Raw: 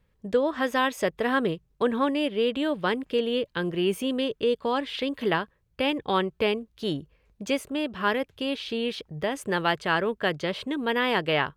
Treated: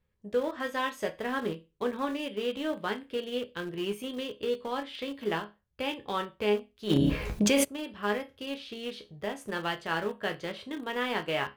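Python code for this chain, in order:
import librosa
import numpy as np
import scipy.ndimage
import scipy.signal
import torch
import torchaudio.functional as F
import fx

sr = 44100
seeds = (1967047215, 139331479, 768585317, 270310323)

p1 = fx.resonator_bank(x, sr, root=37, chord='minor', decay_s=0.26)
p2 = np.where(np.abs(p1) >= 10.0 ** (-34.0 / 20.0), p1, 0.0)
p3 = p1 + (p2 * librosa.db_to_amplitude(-11.0))
p4 = fx.env_flatten(p3, sr, amount_pct=100, at=(6.89, 7.63), fade=0.02)
y = p4 * librosa.db_to_amplitude(1.5)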